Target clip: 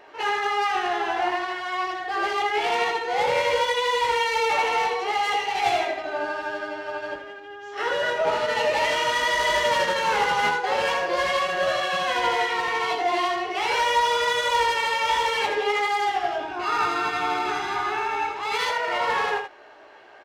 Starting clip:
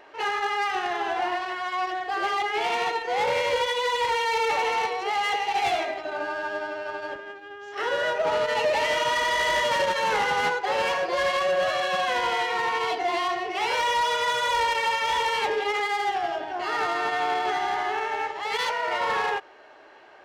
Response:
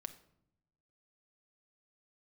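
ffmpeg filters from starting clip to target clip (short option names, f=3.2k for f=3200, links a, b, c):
-filter_complex "[0:a]asettb=1/sr,asplit=3[a][b][c];[a]atrim=end=16.404[d];[b]atrim=start=16.4:end=18.57,asetpts=PTS-STARTPTS,afade=t=in:d=0.004:c=qsin,afade=t=out:st=2.166:d=0.004:c=qsin,aecho=1:1:0.8:0.56,atrim=end_sample=95697[e];[c]atrim=start=18.566[f];[d][e]acrossfade=d=0.004:c1=hsin:c2=qsin[g];[g][f]acrossfade=d=0.004:c1=qsin:c2=hsin,aecho=1:1:17|80:0.562|0.473"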